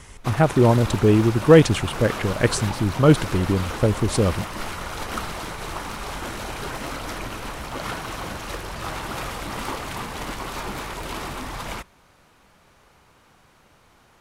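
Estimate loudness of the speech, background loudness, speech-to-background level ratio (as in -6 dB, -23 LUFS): -19.5 LUFS, -31.5 LUFS, 12.0 dB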